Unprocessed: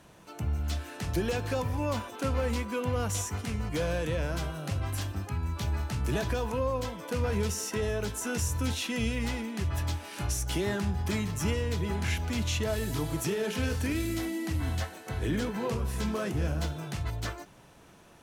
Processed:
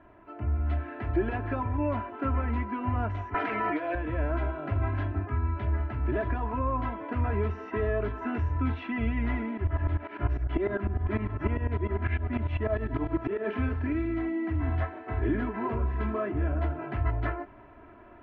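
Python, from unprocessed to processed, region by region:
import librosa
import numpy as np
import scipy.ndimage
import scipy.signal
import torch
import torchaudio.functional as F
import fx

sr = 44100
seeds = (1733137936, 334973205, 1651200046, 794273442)

y = fx.chain(x, sr, fx.highpass(hz=400.0, slope=12),
    fx.comb(ms=6.2, depth=0.93),
    fx.env_flatten(amount_pct=100), at=(3.34, 3.95))
y = fx.chain(y, sr, fx.air_absorb(metres=81.0),
    fx.tremolo_shape(shape='saw_up', hz=10.0, depth_pct=90), at=(9.57, 13.46))
y = scipy.signal.sosfilt(scipy.signal.cheby2(4, 80, 10000.0, 'lowpass', fs=sr, output='sos'), y)
y = y + 0.98 * np.pad(y, (int(3.0 * sr / 1000.0), 0))[:len(y)]
y = fx.rider(y, sr, range_db=10, speed_s=0.5)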